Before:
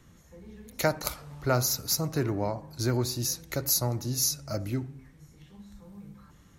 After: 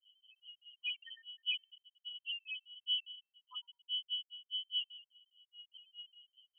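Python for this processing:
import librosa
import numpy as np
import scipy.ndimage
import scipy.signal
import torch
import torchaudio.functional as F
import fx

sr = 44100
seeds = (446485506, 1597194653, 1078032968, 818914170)

y = fx.notch(x, sr, hz=610.0, q=17.0)
y = fx.spec_topn(y, sr, count=1)
y = fx.granulator(y, sr, seeds[0], grain_ms=150.0, per_s=4.9, spray_ms=19.0, spread_st=0)
y = fx.comb_fb(y, sr, f0_hz=430.0, decay_s=0.65, harmonics='all', damping=0.0, mix_pct=30)
y = fx.freq_invert(y, sr, carrier_hz=3100)
y = fx.sustainer(y, sr, db_per_s=110.0)
y = y * 10.0 ** (4.5 / 20.0)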